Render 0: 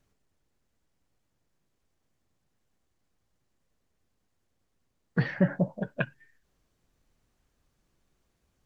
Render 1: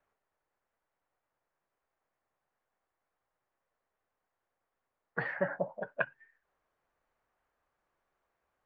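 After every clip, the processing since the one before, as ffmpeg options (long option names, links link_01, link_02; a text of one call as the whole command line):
ffmpeg -i in.wav -filter_complex "[0:a]acrossover=split=530 2000:gain=0.0891 1 0.0891[link_01][link_02][link_03];[link_01][link_02][link_03]amix=inputs=3:normalize=0,volume=3dB" out.wav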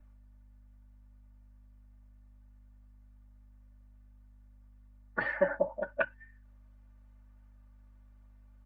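ffmpeg -i in.wav -filter_complex "[0:a]aeval=exprs='val(0)+0.000631*(sin(2*PI*50*n/s)+sin(2*PI*2*50*n/s)/2+sin(2*PI*3*50*n/s)/3+sin(2*PI*4*50*n/s)/4+sin(2*PI*5*50*n/s)/5)':channel_layout=same,aecho=1:1:3.4:0.99,acrossover=split=120[link_01][link_02];[link_01]acontrast=28[link_03];[link_03][link_02]amix=inputs=2:normalize=0" out.wav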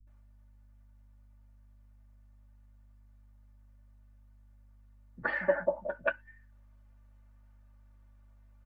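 ffmpeg -i in.wav -filter_complex "[0:a]asplit=2[link_01][link_02];[link_02]adelay=12,volume=-12.5dB[link_03];[link_01][link_03]amix=inputs=2:normalize=0,acrossover=split=200[link_04][link_05];[link_05]adelay=70[link_06];[link_04][link_06]amix=inputs=2:normalize=0" out.wav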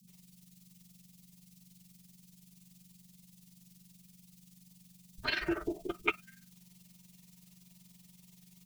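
ffmpeg -i in.wav -af "tremolo=f=21:d=0.667,aexciter=amount=15.2:drive=7.7:freq=2700,afreqshift=-230" out.wav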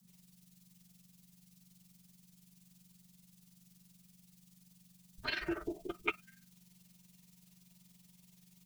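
ffmpeg -i in.wav -af "acrusher=bits=11:mix=0:aa=0.000001,volume=-4dB" out.wav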